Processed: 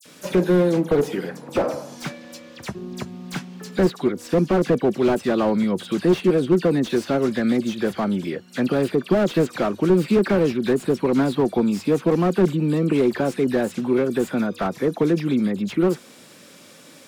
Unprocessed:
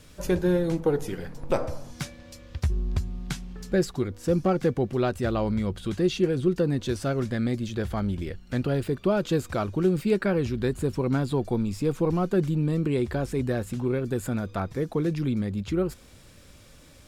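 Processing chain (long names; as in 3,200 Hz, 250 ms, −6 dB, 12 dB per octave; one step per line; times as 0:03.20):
high-pass filter 180 Hz 24 dB per octave
all-pass dispersion lows, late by 54 ms, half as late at 3,000 Hz
slew-rate limiting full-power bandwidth 35 Hz
level +8 dB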